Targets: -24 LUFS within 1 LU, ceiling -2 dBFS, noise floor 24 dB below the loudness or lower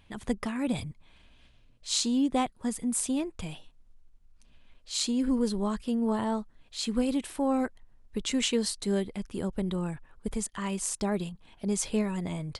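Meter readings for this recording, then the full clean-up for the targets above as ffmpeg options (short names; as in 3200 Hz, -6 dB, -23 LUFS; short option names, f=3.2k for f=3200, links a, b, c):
loudness -30.5 LUFS; peak -11.0 dBFS; loudness target -24.0 LUFS
-> -af "volume=6.5dB"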